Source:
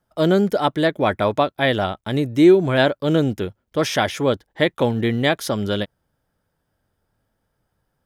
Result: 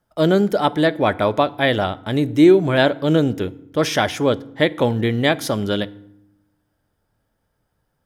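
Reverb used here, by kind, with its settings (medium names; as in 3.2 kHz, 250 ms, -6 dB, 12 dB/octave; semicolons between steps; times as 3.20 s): FDN reverb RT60 0.76 s, low-frequency decay 1.6×, high-frequency decay 0.7×, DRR 16.5 dB; trim +1 dB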